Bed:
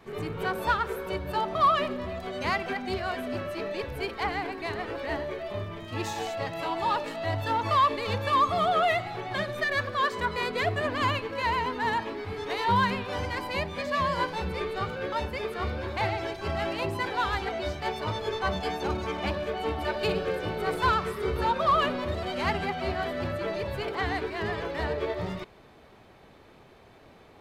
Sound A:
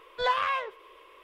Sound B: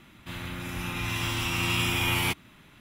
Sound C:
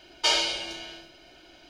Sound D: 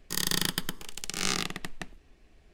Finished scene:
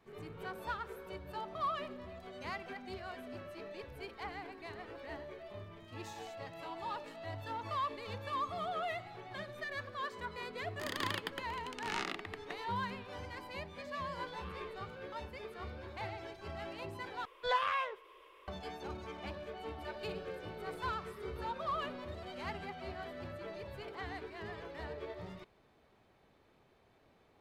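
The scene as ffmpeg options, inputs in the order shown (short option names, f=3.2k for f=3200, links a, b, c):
-filter_complex "[1:a]asplit=2[a][b];[0:a]volume=-14dB[c];[4:a]acrossover=split=250 3200:gain=0.0891 1 0.141[d][e][f];[d][e][f]amix=inputs=3:normalize=0[g];[a]alimiter=level_in=2.5dB:limit=-24dB:level=0:latency=1:release=494,volume=-2.5dB[h];[c]asplit=2[i][j];[i]atrim=end=17.254[k];[b]atrim=end=1.23,asetpts=PTS-STARTPTS,volume=-6dB[l];[j]atrim=start=18.476[m];[g]atrim=end=2.53,asetpts=PTS-STARTPTS,volume=-5dB,afade=t=in:d=0.004:c=hsin,afade=t=out:st=2.526:d=0.004:c=hsin,adelay=10690[n];[h]atrim=end=1.23,asetpts=PTS-STARTPTS,volume=-14dB,afade=t=in:d=0.004:c=hsin,afade=t=out:st=1.226:d=0.004:c=hsin,adelay=14080[o];[k][l]acrossfade=d=0.004:c1=hsin:c2=hsin[p];[p][m]acrossfade=d=0.004:c1=hsin:c2=hsin[q];[q][n][o]amix=inputs=3:normalize=0"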